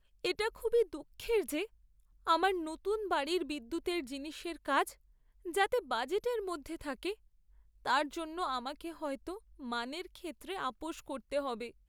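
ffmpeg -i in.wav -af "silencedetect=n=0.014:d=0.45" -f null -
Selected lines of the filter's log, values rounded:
silence_start: 1.65
silence_end: 2.27 | silence_duration: 0.62
silence_start: 4.89
silence_end: 5.46 | silence_duration: 0.58
silence_start: 7.13
silence_end: 7.86 | silence_duration: 0.73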